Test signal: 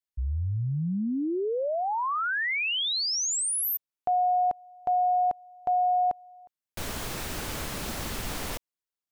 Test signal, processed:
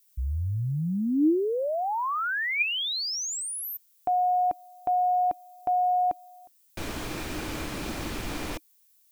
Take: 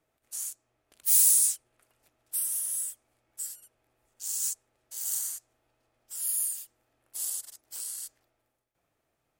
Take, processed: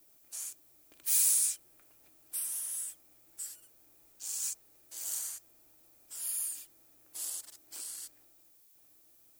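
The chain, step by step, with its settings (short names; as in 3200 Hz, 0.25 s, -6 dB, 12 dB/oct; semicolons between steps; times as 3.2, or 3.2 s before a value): high shelf 6900 Hz -8 dB; small resonant body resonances 310/2400 Hz, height 9 dB, ringing for 45 ms; added noise violet -63 dBFS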